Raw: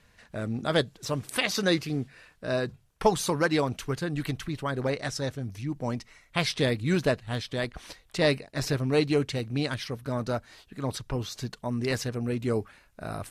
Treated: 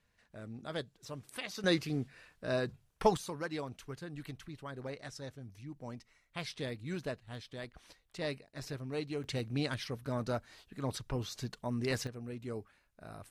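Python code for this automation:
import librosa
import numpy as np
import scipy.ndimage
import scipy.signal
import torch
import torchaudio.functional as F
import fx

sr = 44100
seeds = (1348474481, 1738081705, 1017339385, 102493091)

y = fx.gain(x, sr, db=fx.steps((0.0, -14.5), (1.64, -5.0), (3.17, -14.0), (9.24, -5.5), (12.07, -13.5)))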